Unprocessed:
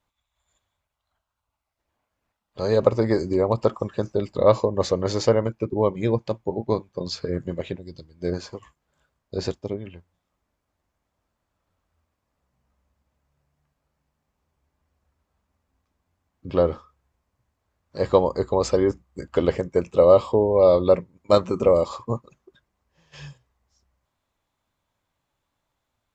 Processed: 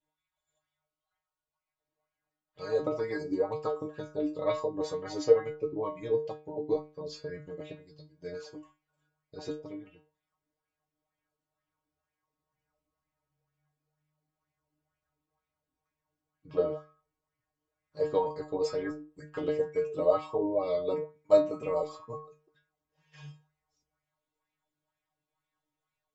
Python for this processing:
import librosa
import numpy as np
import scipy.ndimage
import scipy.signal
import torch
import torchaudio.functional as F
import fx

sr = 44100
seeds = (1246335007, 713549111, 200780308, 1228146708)

y = fx.stiff_resonator(x, sr, f0_hz=150.0, decay_s=0.37, stiffness=0.002)
y = fx.bell_lfo(y, sr, hz=2.1, low_hz=280.0, high_hz=2400.0, db=10)